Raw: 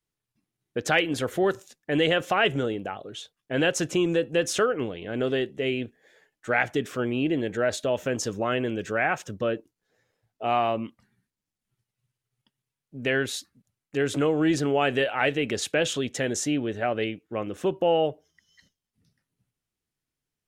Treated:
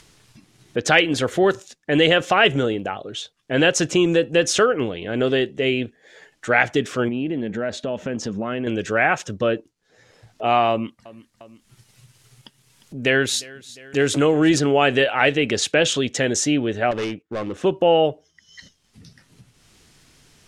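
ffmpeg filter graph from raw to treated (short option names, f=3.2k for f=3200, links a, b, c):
-filter_complex "[0:a]asettb=1/sr,asplit=3[a][b][c];[a]atrim=end=7.084[d];[b]atrim=start=7.08:end=8.67,asetpts=PTS-STARTPTS,afade=t=in:d=0.004:c=qsin,afade=t=out:st=1.586:d=0.004:c=qsin,lowpass=f=2.5k:p=1,equalizer=f=210:t=o:w=0.5:g=10,acompressor=threshold=-33dB:ratio=2:attack=3.2:release=140:knee=1:detection=peak[e];[c]atrim=start=8.666[f];[d][e]acrossfade=d=0.004:c1=hsin:c2=qsin[g];[g][f]acrossfade=d=0.004:c1=qsin:c2=hsin,asettb=1/sr,asplit=3[h][i][j];[h]atrim=end=10.704[k];[i]atrim=start=10.7:end=14.59,asetpts=PTS-STARTPTS,afade=t=in:d=0.004:c=qsin,afade=t=out:st=3.886:d=0.004:c=qsin,highshelf=f=10k:g=11.5,aecho=1:1:353|706:0.0794|0.0238,atrim=end_sample=171549[l];[j]atrim=start=14.586[m];[k][l]acrossfade=d=0.004:c1=hsin:c2=qsin[n];[n][m]acrossfade=d=0.004:c1=qsin:c2=hsin,asettb=1/sr,asplit=3[o][p][q];[o]atrim=end=16.914[r];[p]atrim=start=16.91:end=17.64,asetpts=PTS-STARTPTS,afade=t=in:d=0.004:c=qsin,afade=t=out:st=0.726:d=0.004:c=qsin,highshelf=f=3.7k:g=-6.5,volume=28dB,asoftclip=hard,volume=-28dB,agate=range=-12dB:threshold=-55dB:ratio=16:release=100:detection=peak[s];[q]atrim=start=17.636[t];[r][s]acrossfade=d=0.004:c1=hsin:c2=qsin[u];[u][t]acrossfade=d=0.004:c1=qsin:c2=hsin,acompressor=mode=upward:threshold=-38dB:ratio=2.5,lowpass=6.4k,highshelf=f=4.9k:g=8,volume=6dB"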